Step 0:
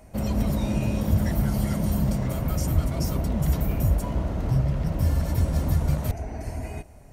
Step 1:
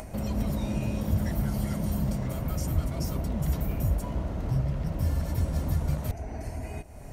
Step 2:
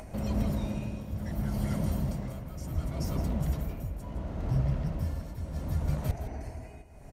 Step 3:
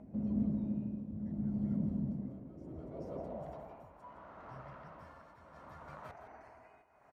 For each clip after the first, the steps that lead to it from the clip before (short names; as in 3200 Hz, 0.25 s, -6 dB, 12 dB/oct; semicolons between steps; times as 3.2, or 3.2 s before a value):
upward compressor, threshold -25 dBFS; gain -4.5 dB
high shelf 8000 Hz -6 dB; tremolo triangle 0.7 Hz, depth 75%; on a send: echo 0.164 s -11 dB
band-pass sweep 230 Hz -> 1200 Hz, 2.16–4.18; gain +1 dB